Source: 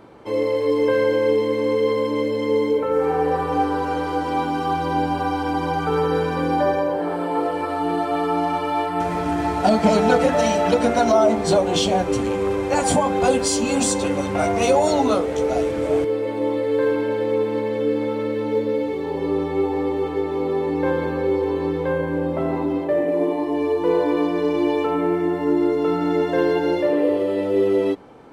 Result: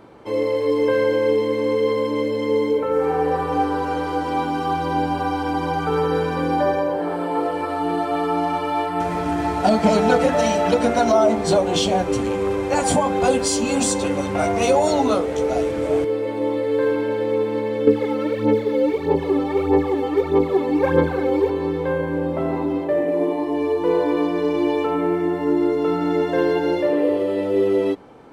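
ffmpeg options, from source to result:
ffmpeg -i in.wav -filter_complex "[0:a]asettb=1/sr,asplit=3[link_01][link_02][link_03];[link_01]atrim=end=17.874[link_04];[link_02]atrim=start=17.87:end=21.5,asetpts=PTS-STARTPTS,afade=type=in:duration=0.004:curve=qsin,afade=type=out:start_time=3.626:duration=0.004:curve=qsin,aphaser=in_gain=1:out_gain=1:delay=3.9:decay=0.65:speed=1.6:type=sinusoidal[link_05];[link_03]atrim=start=21.496[link_06];[link_04][link_05]acrossfade=duration=0.004:curve1=hsin:curve2=qsin[link_07];[link_07][link_06]acrossfade=duration=0.004:curve1=qsin:curve2=hsin" out.wav

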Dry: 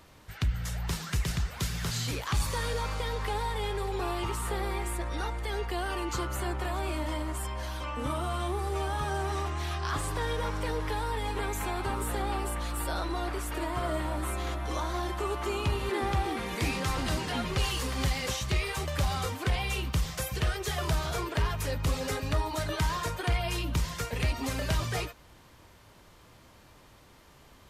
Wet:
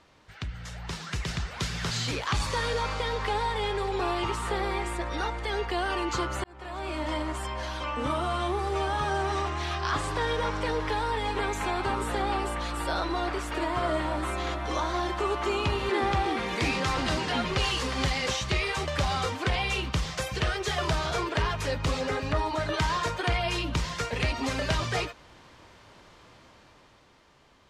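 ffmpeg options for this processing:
ffmpeg -i in.wav -filter_complex "[0:a]asettb=1/sr,asplit=3[link_01][link_02][link_03];[link_01]atrim=end=22.014[link_04];[link_02]atrim=start=22.01:end=22.74,asetpts=PTS-STARTPTS,afade=type=in:duration=0.004:curve=qsin,afade=type=out:start_time=0.726:duration=0.004:curve=qsin,acrossover=split=2600[link_05][link_06];[link_06]acompressor=threshold=-45dB:ratio=4:attack=1:release=60[link_07];[link_05][link_07]amix=inputs=2:normalize=0[link_08];[link_03]atrim=start=22.736[link_09];[link_04][link_08]acrossfade=duration=0.004:curve1=hsin:curve2=qsin[link_10];[link_10][link_09]acrossfade=duration=0.004:curve1=qsin:curve2=hsin,asplit=2[link_11][link_12];[link_11]atrim=end=6.44,asetpts=PTS-STARTPTS,afade=type=out:start_time=6.436:duration=0.004:curve=hsin[link_13];[link_12]atrim=start=6.44,asetpts=PTS-STARTPTS,afade=type=in:duration=0.7[link_14];[link_13][link_14]concat=n=2:v=0:a=1,lowpass=6000,lowshelf=frequency=160:gain=-7.5,dynaudnorm=framelen=140:gausssize=17:maxgain=7dB,volume=-2dB" out.wav

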